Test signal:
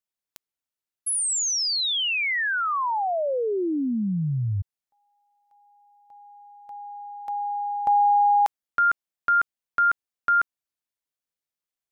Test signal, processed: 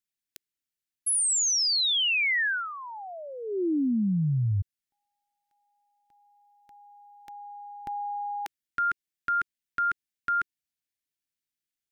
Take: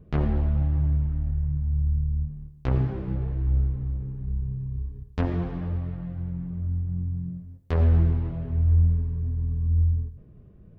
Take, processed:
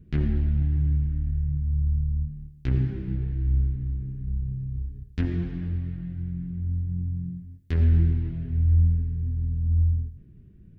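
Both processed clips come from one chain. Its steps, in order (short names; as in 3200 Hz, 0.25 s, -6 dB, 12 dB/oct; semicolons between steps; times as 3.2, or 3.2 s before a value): band shelf 760 Hz -14.5 dB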